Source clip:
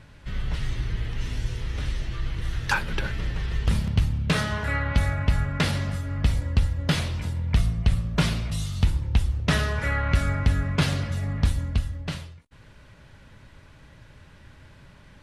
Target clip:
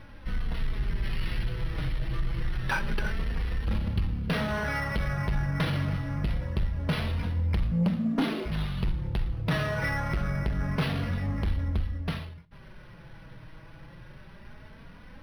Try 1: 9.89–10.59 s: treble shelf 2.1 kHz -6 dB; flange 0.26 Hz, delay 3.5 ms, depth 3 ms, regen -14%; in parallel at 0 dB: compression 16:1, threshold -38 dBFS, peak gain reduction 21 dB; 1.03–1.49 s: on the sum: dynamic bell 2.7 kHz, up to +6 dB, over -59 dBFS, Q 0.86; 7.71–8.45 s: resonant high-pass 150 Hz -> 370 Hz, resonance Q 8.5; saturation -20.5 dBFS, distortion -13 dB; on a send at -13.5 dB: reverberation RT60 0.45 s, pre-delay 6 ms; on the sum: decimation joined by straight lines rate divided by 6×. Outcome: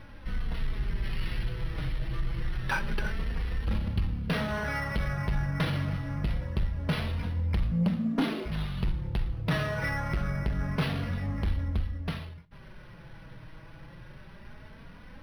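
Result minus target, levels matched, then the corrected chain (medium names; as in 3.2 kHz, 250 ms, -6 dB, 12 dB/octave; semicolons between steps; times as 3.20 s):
compression: peak gain reduction +7.5 dB
9.89–10.59 s: treble shelf 2.1 kHz -6 dB; flange 0.26 Hz, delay 3.5 ms, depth 3 ms, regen -14%; in parallel at 0 dB: compression 16:1, threshold -30 dBFS, peak gain reduction 13.5 dB; 1.03–1.49 s: on the sum: dynamic bell 2.7 kHz, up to +6 dB, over -59 dBFS, Q 0.86; 7.71–8.45 s: resonant high-pass 150 Hz -> 370 Hz, resonance Q 8.5; saturation -20.5 dBFS, distortion -12 dB; on a send at -13.5 dB: reverberation RT60 0.45 s, pre-delay 6 ms; on the sum: decimation joined by straight lines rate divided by 6×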